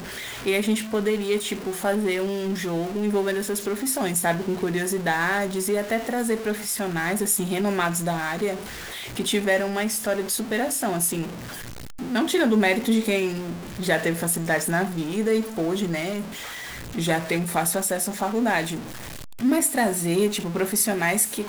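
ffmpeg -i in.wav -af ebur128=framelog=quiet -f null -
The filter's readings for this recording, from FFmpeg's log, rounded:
Integrated loudness:
  I:         -24.2 LUFS
  Threshold: -34.4 LUFS
Loudness range:
  LRA:         2.2 LU
  Threshold: -44.5 LUFS
  LRA low:   -25.4 LUFS
  LRA high:  -23.2 LUFS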